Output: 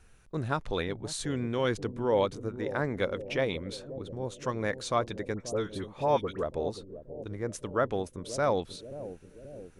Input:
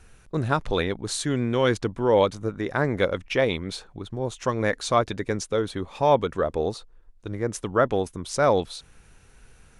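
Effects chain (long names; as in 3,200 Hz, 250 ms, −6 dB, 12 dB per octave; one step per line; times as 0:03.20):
0:05.34–0:06.43: all-pass dispersion highs, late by 64 ms, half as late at 1,500 Hz
on a send: bucket-brigade delay 533 ms, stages 2,048, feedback 62%, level −11.5 dB
on the sum: level −7 dB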